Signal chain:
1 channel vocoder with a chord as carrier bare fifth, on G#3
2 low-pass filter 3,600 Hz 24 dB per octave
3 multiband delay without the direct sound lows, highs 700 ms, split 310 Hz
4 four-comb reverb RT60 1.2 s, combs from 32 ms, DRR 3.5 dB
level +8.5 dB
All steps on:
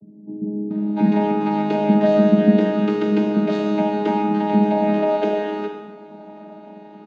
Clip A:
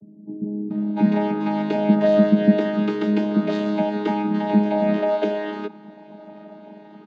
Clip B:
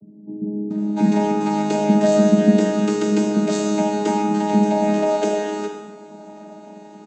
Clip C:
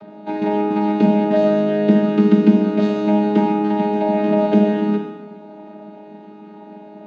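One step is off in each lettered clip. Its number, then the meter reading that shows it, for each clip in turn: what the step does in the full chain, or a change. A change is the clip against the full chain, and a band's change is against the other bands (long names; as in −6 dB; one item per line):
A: 4, echo-to-direct ratio 22.5 dB to 21.0 dB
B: 2, 4 kHz band +3.5 dB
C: 3, echo-to-direct ratio 22.5 dB to −3.5 dB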